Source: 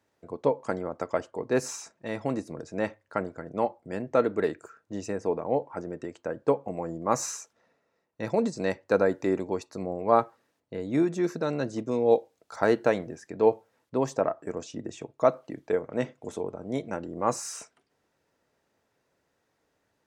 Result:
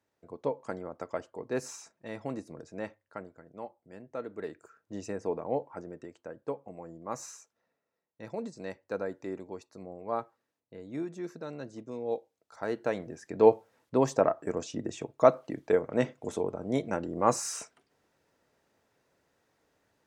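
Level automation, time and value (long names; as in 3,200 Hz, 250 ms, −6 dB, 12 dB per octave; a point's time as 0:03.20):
0:02.64 −7 dB
0:03.49 −15 dB
0:04.21 −15 dB
0:04.94 −4.5 dB
0:05.56 −4.5 dB
0:06.43 −11.5 dB
0:12.62 −11.5 dB
0:13.40 +1.5 dB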